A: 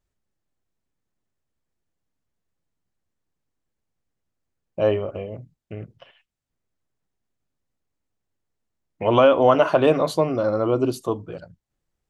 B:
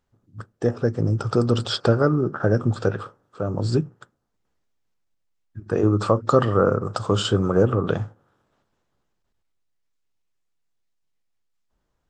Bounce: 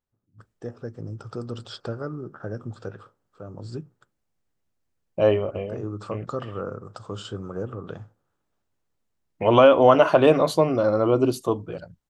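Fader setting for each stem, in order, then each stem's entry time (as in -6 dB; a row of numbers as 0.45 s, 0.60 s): +1.0 dB, -13.5 dB; 0.40 s, 0.00 s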